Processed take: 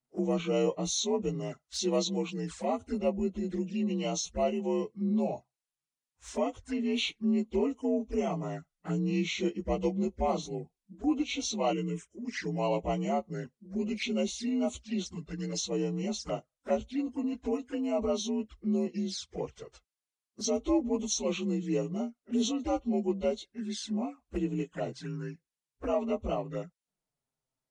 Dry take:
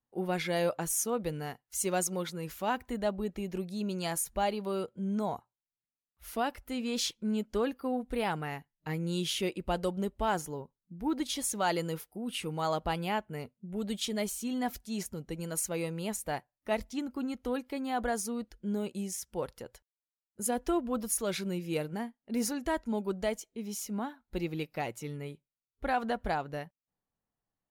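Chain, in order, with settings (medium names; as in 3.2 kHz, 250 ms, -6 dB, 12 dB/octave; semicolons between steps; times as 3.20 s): frequency axis rescaled in octaves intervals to 85%; 11.73–12.25 s: static phaser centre 1.9 kHz, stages 4; touch-sensitive flanger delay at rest 7.8 ms, full sweep at -33.5 dBFS; trim +4.5 dB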